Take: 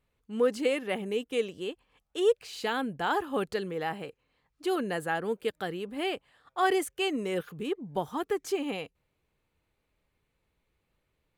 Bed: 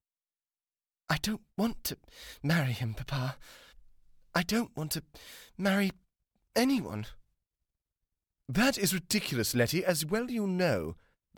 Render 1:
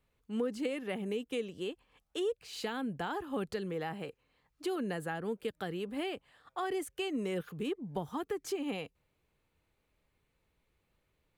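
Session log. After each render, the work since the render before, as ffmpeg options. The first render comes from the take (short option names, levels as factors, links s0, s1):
-filter_complex "[0:a]acrossover=split=250[s0][s1];[s1]acompressor=threshold=0.0158:ratio=4[s2];[s0][s2]amix=inputs=2:normalize=0"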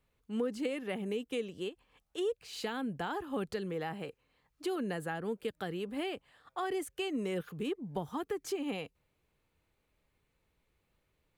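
-filter_complex "[0:a]asplit=3[s0][s1][s2];[s0]afade=t=out:st=1.68:d=0.02[s3];[s1]acompressor=threshold=0.00562:ratio=3:attack=3.2:release=140:knee=1:detection=peak,afade=t=in:st=1.68:d=0.02,afade=t=out:st=2.17:d=0.02[s4];[s2]afade=t=in:st=2.17:d=0.02[s5];[s3][s4][s5]amix=inputs=3:normalize=0"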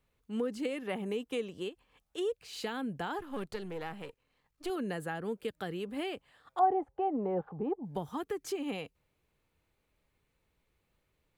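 -filter_complex "[0:a]asettb=1/sr,asplit=3[s0][s1][s2];[s0]atrim=end=0.874[s3];[s1]atrim=start=0.87:end=1.63,asetpts=PTS-STARTPTS,afade=t=in:d=0.004:c=qsin,afade=t=out:st=0.756:d=0.004:c=qsin,equalizer=f=960:w=1.5:g=6[s4];[s2]atrim=start=1.626[s5];[s3][s4]acrossfade=d=0.004:c1=hsin:c2=qsin[s6];[s6][s5]acrossfade=d=0.004:c1=qsin:c2=hsin,asettb=1/sr,asplit=3[s7][s8][s9];[s7]atrim=end=3.194[s10];[s8]atrim=start=3.19:end=4.7,asetpts=PTS-STARTPTS,afade=t=in:d=0.004:c=qsin,afade=t=out:st=1.506:d=0.004:c=qsin,aeval=exprs='if(lt(val(0),0),0.447*val(0),val(0))':c=same[s11];[s9]atrim=start=4.696[s12];[s10][s11]acrossfade=d=0.004:c1=hsin:c2=qsin[s13];[s13][s12]acrossfade=d=0.004:c1=qsin:c2=hsin,asettb=1/sr,asplit=3[s14][s15][s16];[s14]atrim=end=6.594[s17];[s15]atrim=start=6.59:end=7.85,asetpts=PTS-STARTPTS,afade=t=in:d=0.004:c=qsin,afade=t=out:st=1.256:d=0.004:c=qsin,lowpass=f=820:t=q:w=9.5[s18];[s16]atrim=start=7.846[s19];[s17][s18]acrossfade=d=0.004:c1=hsin:c2=qsin[s20];[s20][s19]acrossfade=d=0.004:c1=qsin:c2=hsin"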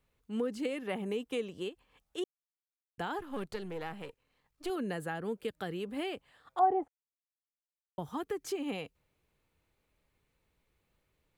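-filter_complex "[0:a]asplit=5[s0][s1][s2][s3][s4];[s0]atrim=end=2.24,asetpts=PTS-STARTPTS,afade=t=out:st=2.236:d=0.004:c=hsin[s5];[s1]atrim=start=2.24:end=2.98,asetpts=PTS-STARTPTS,volume=0[s6];[s2]atrim=start=2.98:end=6.88,asetpts=PTS-STARTPTS,afade=t=in:d=0.004:c=hsin,afade=t=out:st=3.896:d=0.004:c=hsin[s7];[s3]atrim=start=6.88:end=7.98,asetpts=PTS-STARTPTS,volume=0[s8];[s4]atrim=start=7.98,asetpts=PTS-STARTPTS,afade=t=in:d=0.004:c=hsin[s9];[s5][s6][s7][s8][s9]concat=n=5:v=0:a=1"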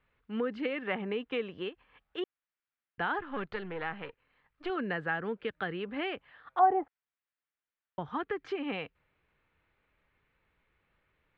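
-af "lowpass=f=3500:w=0.5412,lowpass=f=3500:w=1.3066,equalizer=f=1600:t=o:w=1.4:g=9.5"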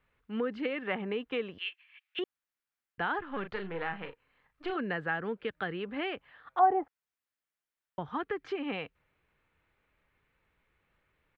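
-filter_complex "[0:a]asettb=1/sr,asplit=3[s0][s1][s2];[s0]atrim=end=1.584[s3];[s1]atrim=start=1.58:end=2.19,asetpts=PTS-STARTPTS,afade=t=in:d=0.004:c=qsin,afade=t=out:st=0.606:d=0.004:c=qsin,highpass=f=2400:t=q:w=3[s4];[s2]atrim=start=2.186[s5];[s3][s4]acrossfade=d=0.004:c1=hsin:c2=qsin[s6];[s6][s5]acrossfade=d=0.004:c1=qsin:c2=hsin,asplit=3[s7][s8][s9];[s7]afade=t=out:st=3.43:d=0.02[s10];[s8]asplit=2[s11][s12];[s12]adelay=36,volume=0.398[s13];[s11][s13]amix=inputs=2:normalize=0,afade=t=in:st=3.43:d=0.02,afade=t=out:st=4.76:d=0.02[s14];[s9]afade=t=in:st=4.76:d=0.02[s15];[s10][s14][s15]amix=inputs=3:normalize=0"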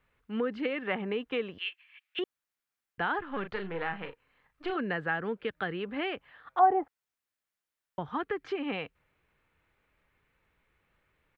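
-af "volume=1.19"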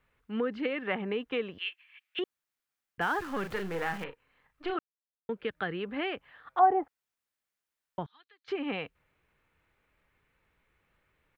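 -filter_complex "[0:a]asettb=1/sr,asplit=3[s0][s1][s2];[s0]atrim=end=3.014[s3];[s1]atrim=start=3.01:end=4.04,asetpts=PTS-STARTPTS,afade=t=in:d=0.004:c=qsin,afade=t=out:st=1.026:d=0.004:c=qsin,aeval=exprs='val(0)+0.5*0.00841*sgn(val(0))':c=same[s4];[s2]atrim=start=4.036[s5];[s3][s4]acrossfade=d=0.004:c1=hsin:c2=qsin[s6];[s6][s5]acrossfade=d=0.004:c1=qsin:c2=hsin,asettb=1/sr,asplit=3[s7][s8][s9];[s7]atrim=end=8.064[s10];[s8]atrim=start=8.06:end=8.48,asetpts=PTS-STARTPTS,afade=t=in:d=0.004:c=qsin,afade=t=out:st=0.416:d=0.004:c=qsin,bandpass=f=4100:t=q:w=6.9[s11];[s9]atrim=start=8.476[s12];[s10][s11]acrossfade=d=0.004:c1=hsin:c2=qsin[s13];[s13][s12]acrossfade=d=0.004:c1=qsin:c2=hsin,asplit=3[s14][s15][s16];[s14]atrim=end=4.79,asetpts=PTS-STARTPTS,afade=t=out:st=4.786:d=0.004:c=hsin[s17];[s15]atrim=start=4.79:end=5.29,asetpts=PTS-STARTPTS,volume=0[s18];[s16]atrim=start=5.29,asetpts=PTS-STARTPTS,afade=t=in:d=0.004:c=hsin[s19];[s17][s18][s19]concat=n=3:v=0:a=1"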